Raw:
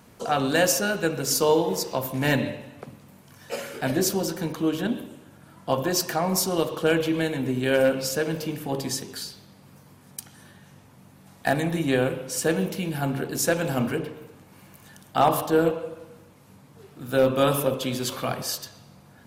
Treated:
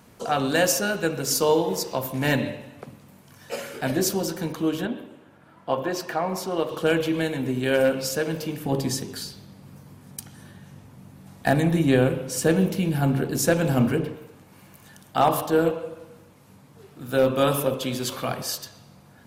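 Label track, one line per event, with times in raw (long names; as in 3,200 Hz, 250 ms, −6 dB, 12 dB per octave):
4.850000	6.690000	bass and treble bass −7 dB, treble −13 dB
8.650000	14.160000	low-shelf EQ 340 Hz +7.5 dB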